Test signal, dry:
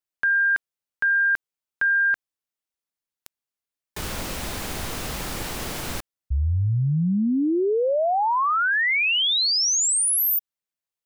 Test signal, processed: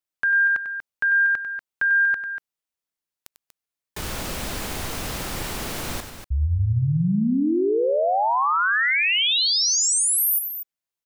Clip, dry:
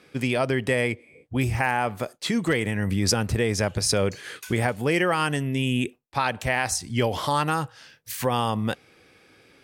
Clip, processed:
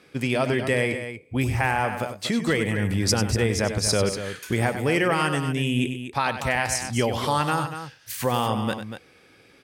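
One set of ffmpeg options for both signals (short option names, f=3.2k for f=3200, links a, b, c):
-af "aecho=1:1:96.21|239.1:0.316|0.316"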